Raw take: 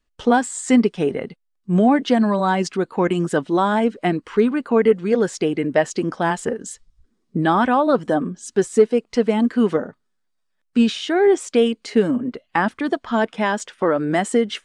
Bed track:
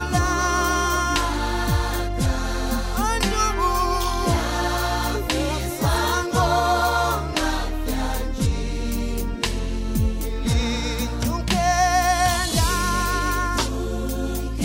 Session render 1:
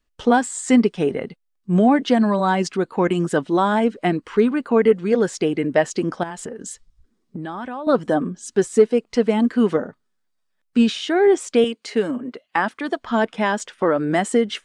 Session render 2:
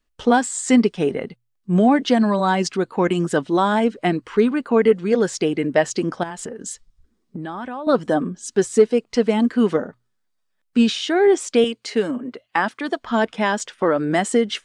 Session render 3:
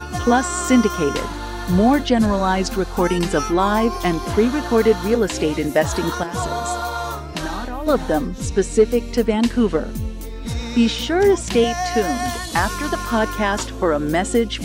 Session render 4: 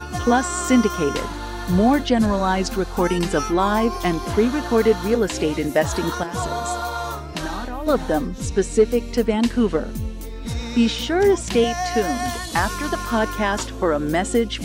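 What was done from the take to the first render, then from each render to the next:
6.23–7.87 compressor 8:1, threshold -27 dBFS; 11.64–12.99 HPF 400 Hz 6 dB/oct
notches 60/120 Hz; dynamic EQ 5200 Hz, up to +4 dB, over -39 dBFS, Q 0.8
add bed track -5 dB
gain -1.5 dB

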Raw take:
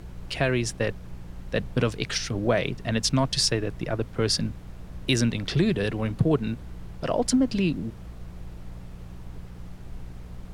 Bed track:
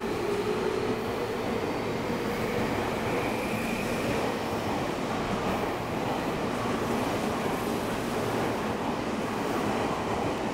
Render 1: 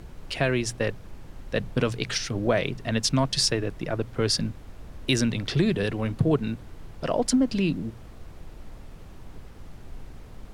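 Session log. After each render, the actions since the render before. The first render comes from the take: de-hum 60 Hz, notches 3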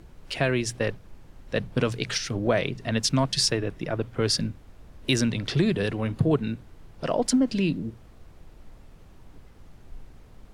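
noise print and reduce 6 dB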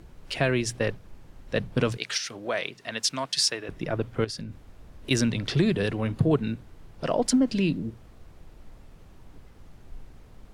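1.97–3.69 HPF 1000 Hz 6 dB/oct; 4.24–5.11 compressor 16:1, threshold -31 dBFS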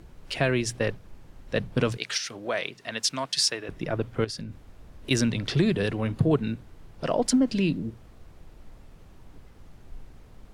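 nothing audible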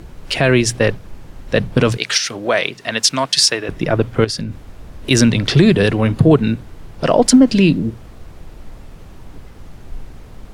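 maximiser +12.5 dB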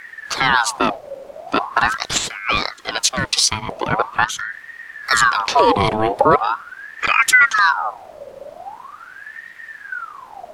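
ring modulator with a swept carrier 1200 Hz, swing 55%, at 0.42 Hz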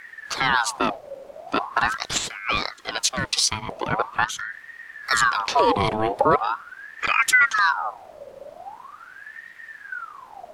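gain -5 dB

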